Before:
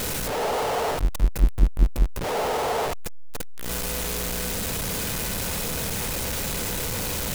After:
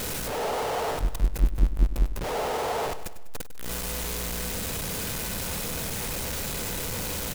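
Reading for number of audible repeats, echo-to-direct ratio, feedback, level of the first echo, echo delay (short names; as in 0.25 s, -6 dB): 4, -12.0 dB, 51%, -13.5 dB, 99 ms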